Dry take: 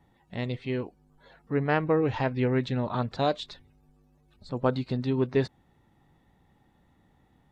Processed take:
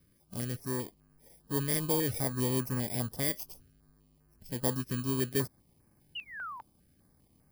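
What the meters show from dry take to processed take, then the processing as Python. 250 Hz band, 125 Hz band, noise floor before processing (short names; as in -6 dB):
-5.5 dB, -4.5 dB, -65 dBFS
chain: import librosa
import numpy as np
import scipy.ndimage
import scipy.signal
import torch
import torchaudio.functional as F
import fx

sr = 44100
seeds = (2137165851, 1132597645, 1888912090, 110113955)

p1 = fx.bit_reversed(x, sr, seeds[0], block=32)
p2 = 10.0 ** (-29.0 / 20.0) * np.tanh(p1 / 10.0 ** (-29.0 / 20.0))
p3 = p1 + (p2 * 10.0 ** (-5.0 / 20.0))
p4 = fx.spec_paint(p3, sr, seeds[1], shape='fall', start_s=6.15, length_s=0.46, low_hz=900.0, high_hz=3000.0, level_db=-30.0)
p5 = fx.filter_held_notch(p4, sr, hz=5.0, low_hz=800.0, high_hz=3500.0)
y = p5 * 10.0 ** (-6.5 / 20.0)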